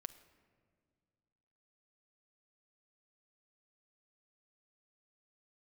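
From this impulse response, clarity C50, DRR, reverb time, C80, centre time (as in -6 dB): 14.5 dB, 10.0 dB, 2.0 s, 16.0 dB, 7 ms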